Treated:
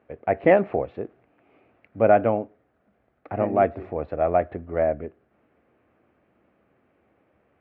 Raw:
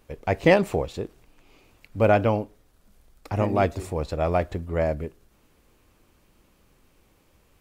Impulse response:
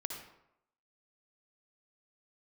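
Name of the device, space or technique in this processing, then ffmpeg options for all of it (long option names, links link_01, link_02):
bass cabinet: -af "highpass=frequency=89:width=0.5412,highpass=frequency=89:width=1.3066,equalizer=frequency=100:width_type=q:width=4:gain=-8,equalizer=frequency=160:width_type=q:width=4:gain=-7,equalizer=frequency=680:width_type=q:width=4:gain=6,equalizer=frequency=980:width_type=q:width=4:gain=-6,lowpass=frequency=2100:width=0.5412,lowpass=frequency=2100:width=1.3066"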